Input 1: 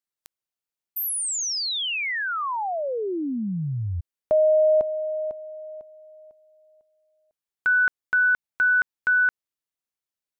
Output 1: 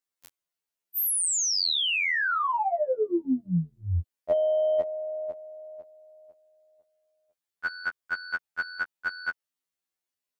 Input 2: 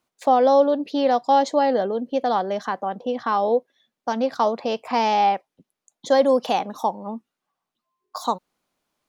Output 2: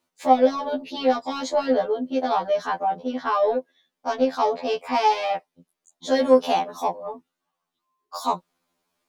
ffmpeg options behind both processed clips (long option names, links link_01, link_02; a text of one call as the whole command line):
ffmpeg -i in.wav -filter_complex "[0:a]lowshelf=frequency=110:gain=-5.5,asplit=2[link_01][link_02];[link_02]asoftclip=type=tanh:threshold=-18.5dB,volume=-6.5dB[link_03];[link_01][link_03]amix=inputs=2:normalize=0,afftfilt=real='re*2*eq(mod(b,4),0)':imag='im*2*eq(mod(b,4),0)':win_size=2048:overlap=0.75" out.wav